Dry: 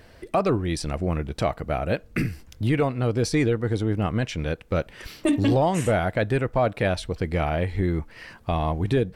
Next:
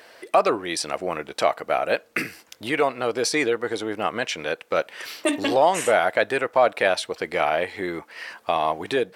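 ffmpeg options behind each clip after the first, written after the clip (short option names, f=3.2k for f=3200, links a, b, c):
-af "highpass=540,volume=6.5dB"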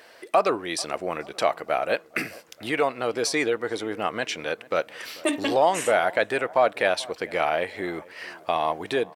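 -filter_complex "[0:a]asplit=2[a][b];[b]adelay=440,lowpass=f=1.5k:p=1,volume=-21dB,asplit=2[c][d];[d]adelay=440,lowpass=f=1.5k:p=1,volume=0.55,asplit=2[e][f];[f]adelay=440,lowpass=f=1.5k:p=1,volume=0.55,asplit=2[g][h];[h]adelay=440,lowpass=f=1.5k:p=1,volume=0.55[i];[a][c][e][g][i]amix=inputs=5:normalize=0,volume=-2dB"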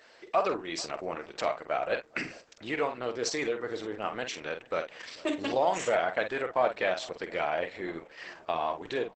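-filter_complex "[0:a]asplit=2[a][b];[b]adelay=48,volume=-8dB[c];[a][c]amix=inputs=2:normalize=0,volume=-6dB" -ar 48000 -c:a libopus -b:a 10k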